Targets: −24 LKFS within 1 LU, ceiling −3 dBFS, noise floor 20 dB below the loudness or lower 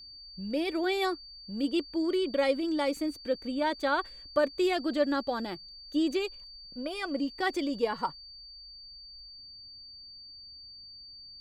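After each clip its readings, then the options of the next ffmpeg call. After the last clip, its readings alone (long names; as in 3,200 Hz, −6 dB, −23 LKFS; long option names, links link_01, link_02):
interfering tone 4,600 Hz; level of the tone −46 dBFS; integrated loudness −31.0 LKFS; sample peak −13.5 dBFS; target loudness −24.0 LKFS
→ -af "bandreject=frequency=4600:width=30"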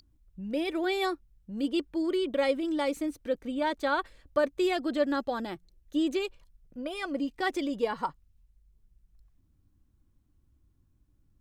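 interfering tone none found; integrated loudness −31.0 LKFS; sample peak −14.0 dBFS; target loudness −24.0 LKFS
→ -af "volume=7dB"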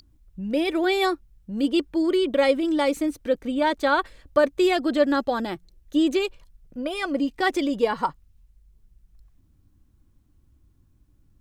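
integrated loudness −24.0 LKFS; sample peak −7.0 dBFS; background noise floor −61 dBFS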